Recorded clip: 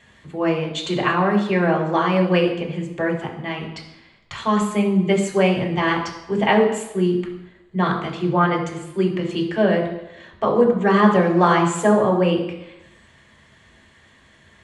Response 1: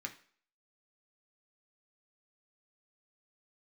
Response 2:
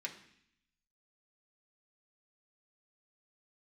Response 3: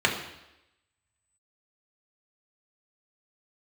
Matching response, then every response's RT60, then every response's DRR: 3; non-exponential decay, 0.65 s, 0.90 s; 2.0, −1.0, −1.0 decibels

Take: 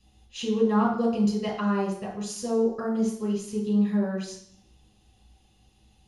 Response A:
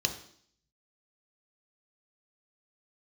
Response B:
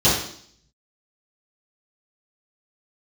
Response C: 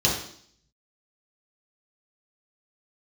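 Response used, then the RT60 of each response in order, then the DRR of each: C; 0.60, 0.60, 0.60 seconds; 6.0, −12.5, −3.5 decibels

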